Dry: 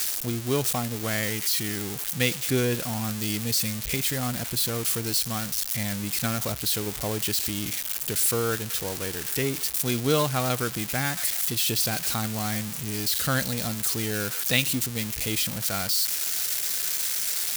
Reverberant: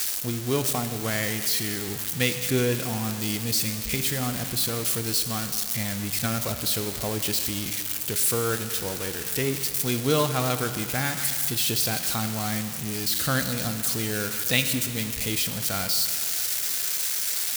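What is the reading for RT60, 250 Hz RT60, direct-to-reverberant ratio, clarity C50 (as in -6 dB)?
2.4 s, 2.4 s, 8.5 dB, 9.5 dB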